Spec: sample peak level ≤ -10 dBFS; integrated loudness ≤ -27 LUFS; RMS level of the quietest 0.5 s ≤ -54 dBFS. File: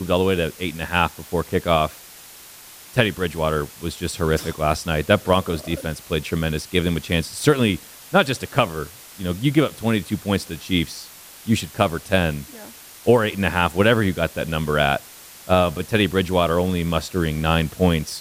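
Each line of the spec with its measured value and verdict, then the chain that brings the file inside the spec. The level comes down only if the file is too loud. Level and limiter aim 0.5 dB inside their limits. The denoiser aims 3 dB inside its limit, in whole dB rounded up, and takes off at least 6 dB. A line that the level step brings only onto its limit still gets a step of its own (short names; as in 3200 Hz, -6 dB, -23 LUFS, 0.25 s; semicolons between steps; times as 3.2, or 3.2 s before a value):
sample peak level -3.0 dBFS: fail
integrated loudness -21.5 LUFS: fail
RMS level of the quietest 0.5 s -43 dBFS: fail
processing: denoiser 8 dB, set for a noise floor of -43 dBFS; gain -6 dB; limiter -10.5 dBFS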